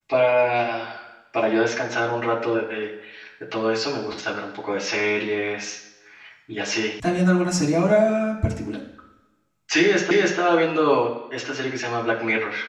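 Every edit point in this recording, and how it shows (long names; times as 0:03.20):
0:07.00: cut off before it has died away
0:10.11: the same again, the last 0.29 s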